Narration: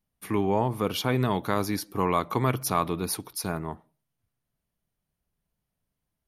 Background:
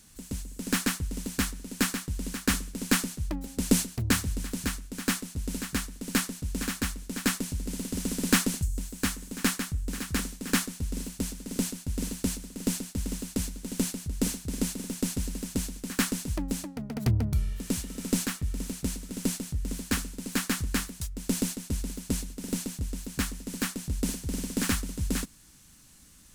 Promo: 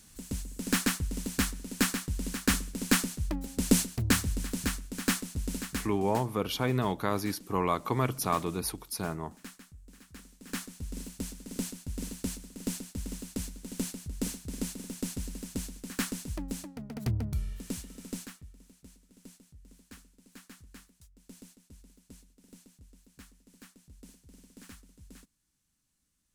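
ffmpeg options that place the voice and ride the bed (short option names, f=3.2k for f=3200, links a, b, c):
-filter_complex "[0:a]adelay=5550,volume=-3.5dB[a];[1:a]volume=14.5dB,afade=t=out:st=5.43:d=0.81:silence=0.1,afade=t=in:st=10.23:d=0.76:silence=0.177828,afade=t=out:st=17.53:d=1.03:silence=0.133352[b];[a][b]amix=inputs=2:normalize=0"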